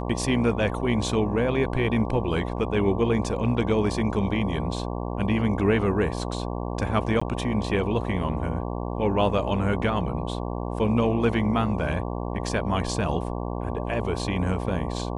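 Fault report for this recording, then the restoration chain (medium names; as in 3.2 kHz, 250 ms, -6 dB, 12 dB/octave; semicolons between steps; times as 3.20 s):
buzz 60 Hz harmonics 19 -30 dBFS
7.20–7.21 s: dropout 15 ms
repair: de-hum 60 Hz, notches 19; interpolate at 7.20 s, 15 ms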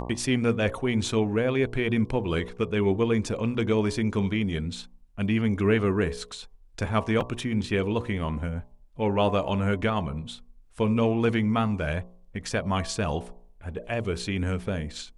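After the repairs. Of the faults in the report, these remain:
nothing left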